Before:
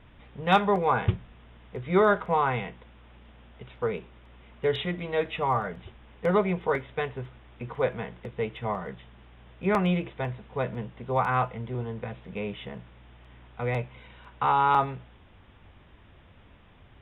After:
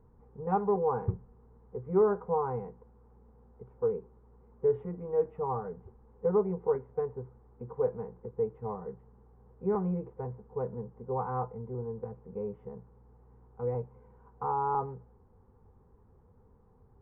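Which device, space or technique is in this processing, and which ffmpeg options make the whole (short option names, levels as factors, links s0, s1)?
under water: -af "lowpass=f=1000:w=0.5412,lowpass=f=1000:w=1.3066,superequalizer=6b=0.501:8b=0.282:14b=2.24:15b=1.78:16b=1.41,equalizer=f=460:t=o:w=0.59:g=7,volume=0.473"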